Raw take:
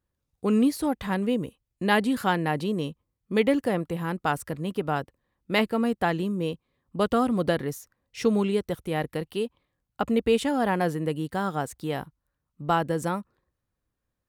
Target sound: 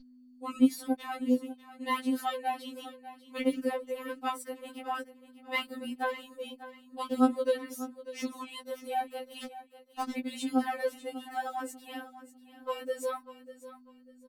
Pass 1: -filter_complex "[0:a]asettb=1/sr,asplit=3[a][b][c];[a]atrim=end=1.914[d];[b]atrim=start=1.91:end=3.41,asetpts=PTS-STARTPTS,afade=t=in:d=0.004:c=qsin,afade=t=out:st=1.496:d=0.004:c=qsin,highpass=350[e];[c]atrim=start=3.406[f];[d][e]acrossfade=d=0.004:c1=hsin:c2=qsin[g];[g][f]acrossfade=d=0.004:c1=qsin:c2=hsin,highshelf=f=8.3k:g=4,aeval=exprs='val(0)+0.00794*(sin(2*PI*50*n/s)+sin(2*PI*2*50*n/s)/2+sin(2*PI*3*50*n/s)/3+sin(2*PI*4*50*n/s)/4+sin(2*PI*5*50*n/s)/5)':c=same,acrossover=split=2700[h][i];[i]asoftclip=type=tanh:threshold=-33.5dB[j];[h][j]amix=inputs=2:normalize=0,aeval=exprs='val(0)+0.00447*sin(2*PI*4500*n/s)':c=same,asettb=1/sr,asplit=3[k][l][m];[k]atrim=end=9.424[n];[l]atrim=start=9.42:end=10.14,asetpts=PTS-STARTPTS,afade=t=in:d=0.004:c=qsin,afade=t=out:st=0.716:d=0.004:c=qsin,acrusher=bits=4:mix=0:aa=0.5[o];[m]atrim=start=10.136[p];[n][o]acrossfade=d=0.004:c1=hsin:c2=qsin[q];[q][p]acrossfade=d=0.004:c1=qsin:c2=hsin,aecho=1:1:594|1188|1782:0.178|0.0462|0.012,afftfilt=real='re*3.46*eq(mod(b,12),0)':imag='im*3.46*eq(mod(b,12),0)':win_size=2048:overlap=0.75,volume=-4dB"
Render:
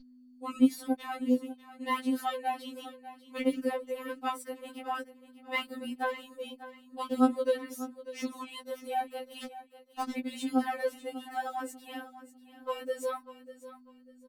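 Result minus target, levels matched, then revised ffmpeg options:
soft clip: distortion +5 dB
-filter_complex "[0:a]asettb=1/sr,asplit=3[a][b][c];[a]atrim=end=1.914[d];[b]atrim=start=1.91:end=3.41,asetpts=PTS-STARTPTS,afade=t=in:d=0.004:c=qsin,afade=t=out:st=1.496:d=0.004:c=qsin,highpass=350[e];[c]atrim=start=3.406[f];[d][e]acrossfade=d=0.004:c1=hsin:c2=qsin[g];[g][f]acrossfade=d=0.004:c1=qsin:c2=hsin,highshelf=f=8.3k:g=4,aeval=exprs='val(0)+0.00794*(sin(2*PI*50*n/s)+sin(2*PI*2*50*n/s)/2+sin(2*PI*3*50*n/s)/3+sin(2*PI*4*50*n/s)/4+sin(2*PI*5*50*n/s)/5)':c=same,acrossover=split=2700[h][i];[i]asoftclip=type=tanh:threshold=-27dB[j];[h][j]amix=inputs=2:normalize=0,aeval=exprs='val(0)+0.00447*sin(2*PI*4500*n/s)':c=same,asettb=1/sr,asplit=3[k][l][m];[k]atrim=end=9.424[n];[l]atrim=start=9.42:end=10.14,asetpts=PTS-STARTPTS,afade=t=in:d=0.004:c=qsin,afade=t=out:st=0.716:d=0.004:c=qsin,acrusher=bits=4:mix=0:aa=0.5[o];[m]atrim=start=10.136[p];[n][o]acrossfade=d=0.004:c1=hsin:c2=qsin[q];[q][p]acrossfade=d=0.004:c1=qsin:c2=hsin,aecho=1:1:594|1188|1782:0.178|0.0462|0.012,afftfilt=real='re*3.46*eq(mod(b,12),0)':imag='im*3.46*eq(mod(b,12),0)':win_size=2048:overlap=0.75,volume=-4dB"

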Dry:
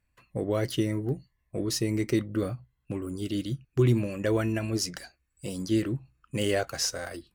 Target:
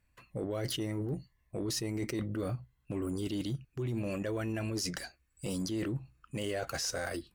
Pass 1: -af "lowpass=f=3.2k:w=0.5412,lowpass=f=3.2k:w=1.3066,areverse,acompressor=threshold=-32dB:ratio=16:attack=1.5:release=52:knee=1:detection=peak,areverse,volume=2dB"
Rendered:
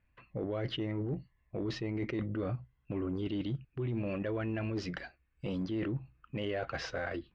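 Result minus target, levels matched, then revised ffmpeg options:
4000 Hz band -4.0 dB
-af "areverse,acompressor=threshold=-32dB:ratio=16:attack=1.5:release=52:knee=1:detection=peak,areverse,volume=2dB"

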